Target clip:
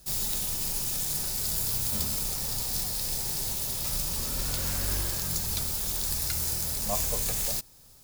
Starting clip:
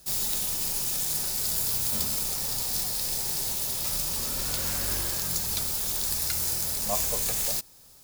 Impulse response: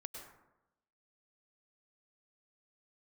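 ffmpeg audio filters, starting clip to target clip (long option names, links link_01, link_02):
-af "lowshelf=frequency=160:gain=8,volume=-2dB"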